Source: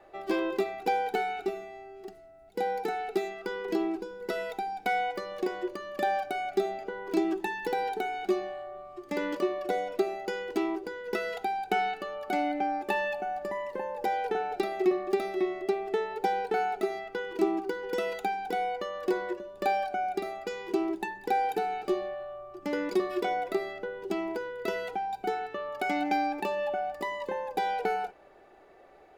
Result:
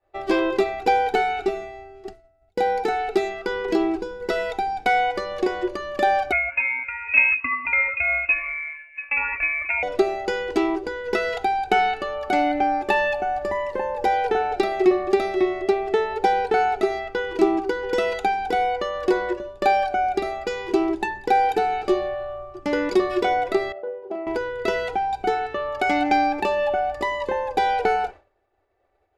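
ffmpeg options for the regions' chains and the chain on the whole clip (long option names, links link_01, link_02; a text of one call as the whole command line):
ffmpeg -i in.wav -filter_complex "[0:a]asettb=1/sr,asplit=3[link_01][link_02][link_03];[link_01]atrim=end=6.324[link_04];[link_02]atrim=start=6.32:end=9.83,asetpts=PTS-STARTPTS,afade=type=in:duration=0.004:curve=qsin,afade=type=out:start_time=3.506:duration=0.004:curve=qsin,highpass=frequency=440:poles=1,aphaser=in_gain=1:out_gain=1:delay=1.5:decay=0.43:speed=1.1:type=sinusoidal,lowpass=frequency=2500:width_type=q:width=0.5098,lowpass=frequency=2500:width_type=q:width=0.6013,lowpass=frequency=2500:width_type=q:width=0.9,lowpass=frequency=2500:width_type=q:width=2.563,afreqshift=-2900[link_05];[link_03]atrim=start=9.826[link_06];[link_04][link_05]acrossfade=duration=0.004:curve1=hsin:curve2=qsin[link_07];[link_07][link_06]acrossfade=duration=0.004:curve1=qsin:curve2=hsin,asettb=1/sr,asplit=3[link_08][link_09][link_10];[link_08]atrim=end=23.724[link_11];[link_09]atrim=start=23.72:end=24.27,asetpts=PTS-STARTPTS,afade=type=in:duration=0.004:curve=qsin,afade=type=out:start_time=0.546:duration=0.004:curve=qsin,bandpass=frequency=610:width_type=q:width=2.5,asplit=2[link_12][link_13];[link_13]adelay=39,volume=-6dB[link_14];[link_12][link_14]amix=inputs=2:normalize=0,atrim=end_sample=24255[link_15];[link_10]atrim=start=24.266[link_16];[link_11][link_15]acrossfade=duration=0.004:curve1=hsin:curve2=qsin[link_17];[link_17][link_16]acrossfade=duration=0.004:curve1=qsin:curve2=hsin,lowpass=8200,lowshelf=frequency=120:width_type=q:width=3:gain=8.5,agate=range=-33dB:threshold=-41dB:ratio=3:detection=peak,volume=9dB" out.wav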